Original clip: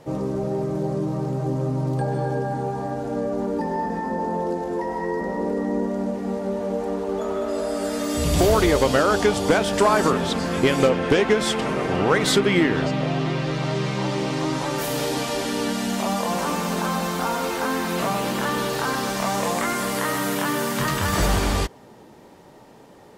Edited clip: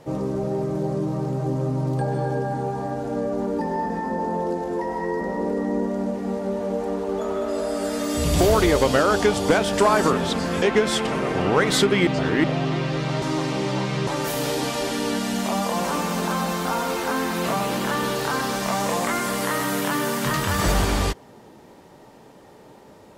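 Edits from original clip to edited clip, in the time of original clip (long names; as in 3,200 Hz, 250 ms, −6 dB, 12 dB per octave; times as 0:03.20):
0:10.62–0:11.16: remove
0:12.61–0:12.98: reverse
0:13.76–0:14.61: reverse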